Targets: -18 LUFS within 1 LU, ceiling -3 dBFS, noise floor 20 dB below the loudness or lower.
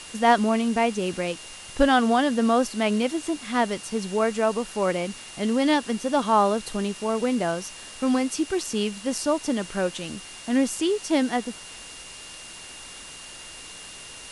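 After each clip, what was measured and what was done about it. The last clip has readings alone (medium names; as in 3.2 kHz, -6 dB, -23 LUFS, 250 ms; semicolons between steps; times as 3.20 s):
steady tone 2.8 kHz; tone level -45 dBFS; noise floor -42 dBFS; noise floor target -45 dBFS; loudness -24.5 LUFS; peak level -6.5 dBFS; loudness target -18.0 LUFS
-> band-stop 2.8 kHz, Q 30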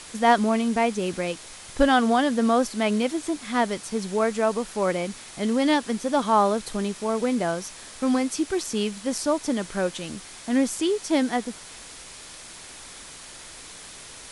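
steady tone not found; noise floor -43 dBFS; noise floor target -45 dBFS
-> noise reduction 6 dB, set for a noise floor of -43 dBFS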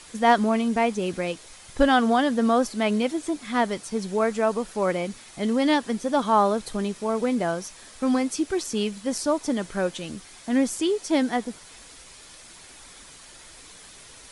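noise floor -47 dBFS; loudness -24.5 LUFS; peak level -6.5 dBFS; loudness target -18.0 LUFS
-> trim +6.5 dB; peak limiter -3 dBFS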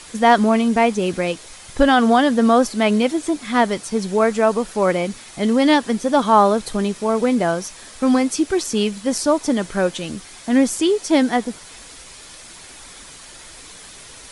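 loudness -18.0 LUFS; peak level -3.0 dBFS; noise floor -41 dBFS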